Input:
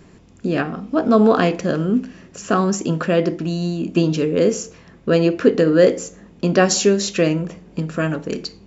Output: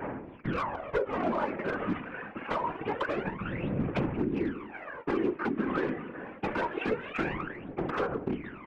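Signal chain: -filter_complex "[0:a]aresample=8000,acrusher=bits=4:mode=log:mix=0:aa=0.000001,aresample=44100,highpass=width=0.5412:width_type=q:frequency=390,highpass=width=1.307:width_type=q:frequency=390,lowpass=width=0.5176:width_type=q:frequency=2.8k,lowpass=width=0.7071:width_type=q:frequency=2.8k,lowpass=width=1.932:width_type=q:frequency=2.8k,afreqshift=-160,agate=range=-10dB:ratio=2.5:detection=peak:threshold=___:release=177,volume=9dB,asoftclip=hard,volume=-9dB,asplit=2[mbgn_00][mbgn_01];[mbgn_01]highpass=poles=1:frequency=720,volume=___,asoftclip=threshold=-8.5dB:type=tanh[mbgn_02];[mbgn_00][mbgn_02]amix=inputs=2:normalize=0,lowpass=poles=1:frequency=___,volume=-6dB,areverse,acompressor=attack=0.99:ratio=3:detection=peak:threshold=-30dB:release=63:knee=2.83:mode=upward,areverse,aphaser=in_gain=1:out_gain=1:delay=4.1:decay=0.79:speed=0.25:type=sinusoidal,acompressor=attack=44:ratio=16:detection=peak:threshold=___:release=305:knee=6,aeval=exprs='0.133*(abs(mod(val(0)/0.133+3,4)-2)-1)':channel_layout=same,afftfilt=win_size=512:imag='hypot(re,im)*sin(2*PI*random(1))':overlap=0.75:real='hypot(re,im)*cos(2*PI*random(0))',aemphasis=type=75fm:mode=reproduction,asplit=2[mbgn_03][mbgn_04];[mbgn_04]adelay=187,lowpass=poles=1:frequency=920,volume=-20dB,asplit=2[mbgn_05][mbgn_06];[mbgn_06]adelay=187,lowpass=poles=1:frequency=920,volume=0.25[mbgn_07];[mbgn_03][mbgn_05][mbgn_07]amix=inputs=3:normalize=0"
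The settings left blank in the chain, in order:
-49dB, 15dB, 1.3k, -22dB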